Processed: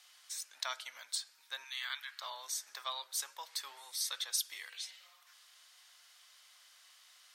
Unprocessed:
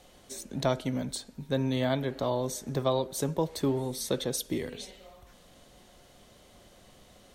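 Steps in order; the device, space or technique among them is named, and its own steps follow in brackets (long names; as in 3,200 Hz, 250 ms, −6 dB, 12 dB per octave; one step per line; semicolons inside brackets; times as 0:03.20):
headphones lying on a table (high-pass filter 1,200 Hz 24 dB per octave; parametric band 5,000 Hz +6 dB 0.26 octaves)
0:01.64–0:02.22: high-pass filter 1,100 Hz 24 dB per octave
level −1 dB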